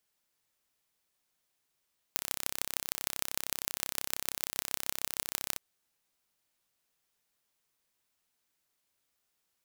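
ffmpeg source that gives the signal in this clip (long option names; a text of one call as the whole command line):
ffmpeg -f lavfi -i "aevalsrc='0.794*eq(mod(n,1340),0)*(0.5+0.5*eq(mod(n,6700),0))':duration=3.41:sample_rate=44100" out.wav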